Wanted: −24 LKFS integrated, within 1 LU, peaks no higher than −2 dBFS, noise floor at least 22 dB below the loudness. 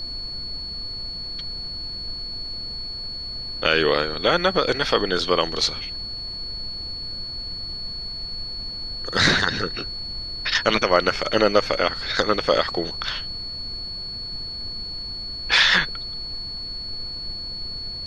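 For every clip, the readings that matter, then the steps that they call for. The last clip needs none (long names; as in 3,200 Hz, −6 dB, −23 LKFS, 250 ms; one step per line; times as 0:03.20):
interfering tone 4,400 Hz; level of the tone −30 dBFS; background noise floor −33 dBFS; target noise floor −46 dBFS; integrated loudness −23.5 LKFS; sample peak −2.5 dBFS; target loudness −24.0 LKFS
→ notch filter 4,400 Hz, Q 30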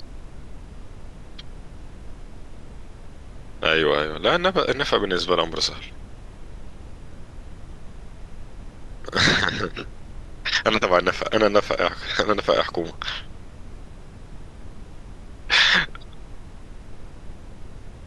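interfering tone none found; background noise floor −42 dBFS; target noise floor −43 dBFS
→ noise reduction from a noise print 6 dB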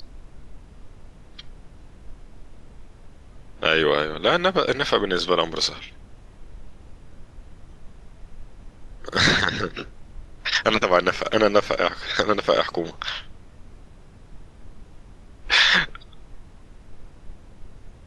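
background noise floor −48 dBFS; integrated loudness −21.0 LKFS; sample peak −2.5 dBFS; target loudness −24.0 LKFS
→ level −3 dB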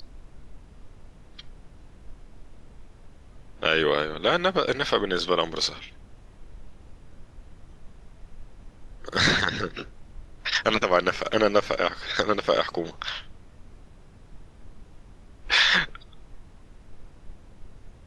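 integrated loudness −24.0 LKFS; sample peak −5.5 dBFS; background noise floor −51 dBFS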